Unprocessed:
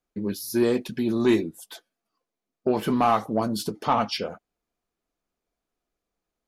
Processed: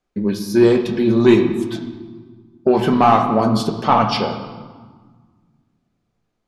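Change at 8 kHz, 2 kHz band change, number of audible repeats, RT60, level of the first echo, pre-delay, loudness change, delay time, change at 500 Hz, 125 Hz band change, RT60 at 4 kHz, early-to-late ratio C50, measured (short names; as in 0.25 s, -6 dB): +1.0 dB, +8.0 dB, none, 1.6 s, none, 5 ms, +8.5 dB, none, +9.5 dB, +11.5 dB, 1.1 s, 8.0 dB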